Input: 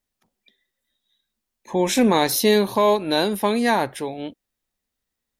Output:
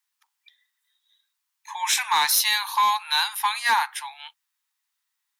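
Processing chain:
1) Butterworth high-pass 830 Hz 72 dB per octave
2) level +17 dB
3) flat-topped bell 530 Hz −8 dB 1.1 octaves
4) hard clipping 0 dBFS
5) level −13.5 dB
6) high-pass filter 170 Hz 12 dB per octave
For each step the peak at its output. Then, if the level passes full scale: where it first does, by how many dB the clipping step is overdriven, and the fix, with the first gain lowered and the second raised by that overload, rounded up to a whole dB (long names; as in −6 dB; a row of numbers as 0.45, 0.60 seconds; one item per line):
−10.0, +7.0, +7.0, 0.0, −13.5, −12.0 dBFS
step 2, 7.0 dB
step 2 +10 dB, step 5 −6.5 dB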